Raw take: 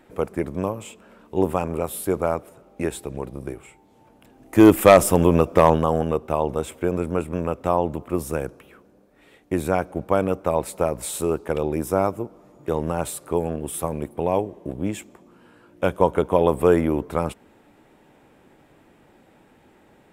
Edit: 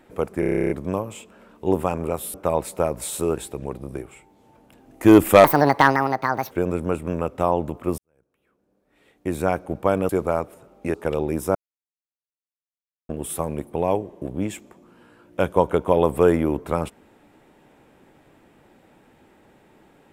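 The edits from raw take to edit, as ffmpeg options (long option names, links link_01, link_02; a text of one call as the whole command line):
ffmpeg -i in.wav -filter_complex "[0:a]asplit=20[link_01][link_02][link_03][link_04][link_05][link_06][link_07][link_08][link_09][link_10][link_11][link_12][link_13][link_14][link_15][link_16][link_17][link_18][link_19][link_20];[link_01]atrim=end=0.432[link_21];[link_02]atrim=start=0.398:end=0.432[link_22];[link_03]atrim=start=0.398:end=0.432[link_23];[link_04]atrim=start=0.398:end=0.432[link_24];[link_05]atrim=start=0.398:end=0.432[link_25];[link_06]atrim=start=0.398:end=0.432[link_26];[link_07]atrim=start=0.398:end=0.432[link_27];[link_08]atrim=start=0.398:end=0.432[link_28];[link_09]atrim=start=0.398:end=0.432[link_29];[link_10]atrim=start=0.398:end=0.432[link_30];[link_11]atrim=start=0.398:end=2.042[link_31];[link_12]atrim=start=10.348:end=11.382[link_32];[link_13]atrim=start=2.888:end=4.964[link_33];[link_14]atrim=start=4.96:end=6.77,asetpts=PTS-STARTPTS,asetrate=74529,aresample=44100,atrim=end_sample=47231,asetpts=PTS-STARTPTS[link_34];[link_15]atrim=start=6.766:end=8.24,asetpts=PTS-STARTPTS,afade=type=out:start_time=1.47:duration=0.004:curve=hsin[link_35];[link_16]atrim=start=8.24:end=10.352,asetpts=PTS-STARTPTS,afade=type=in:duration=1.5:curve=qua[link_36];[link_17]atrim=start=2.038:end=2.892[link_37];[link_18]atrim=start=11.378:end=11.99,asetpts=PTS-STARTPTS,afade=type=out:start_time=0.608:duration=0.004:curve=hsin[link_38];[link_19]atrim=start=11.99:end=13.53,asetpts=PTS-STARTPTS,volume=0[link_39];[link_20]atrim=start=13.53,asetpts=PTS-STARTPTS,afade=type=in:duration=0.004:curve=hsin[link_40];[link_21][link_22]acrossfade=duration=0.004:curve1=hsin:curve2=hsin[link_41];[link_41][link_23]acrossfade=duration=0.004:curve1=hsin:curve2=hsin[link_42];[link_42][link_24]acrossfade=duration=0.004:curve1=hsin:curve2=hsin[link_43];[link_43][link_25]acrossfade=duration=0.004:curve1=hsin:curve2=hsin[link_44];[link_44][link_26]acrossfade=duration=0.004:curve1=hsin:curve2=hsin[link_45];[link_45][link_27]acrossfade=duration=0.004:curve1=hsin:curve2=hsin[link_46];[link_46][link_28]acrossfade=duration=0.004:curve1=hsin:curve2=hsin[link_47];[link_47][link_29]acrossfade=duration=0.004:curve1=hsin:curve2=hsin[link_48];[link_48][link_30]acrossfade=duration=0.004:curve1=hsin:curve2=hsin[link_49];[link_49][link_31]acrossfade=duration=0.004:curve1=hsin:curve2=hsin[link_50];[link_50][link_32]acrossfade=duration=0.004:curve1=hsin:curve2=hsin[link_51];[link_51][link_33]acrossfade=duration=0.004:curve1=hsin:curve2=hsin[link_52];[link_52][link_34]acrossfade=duration=0.004:curve1=hsin:curve2=hsin[link_53];[link_35][link_36]concat=n=2:v=0:a=1[link_54];[link_53][link_54]acrossfade=duration=0.004:curve1=hsin:curve2=hsin[link_55];[link_55][link_37]acrossfade=duration=0.004:curve1=hsin:curve2=hsin[link_56];[link_38][link_39][link_40]concat=n=3:v=0:a=1[link_57];[link_56][link_57]acrossfade=duration=0.004:curve1=hsin:curve2=hsin" out.wav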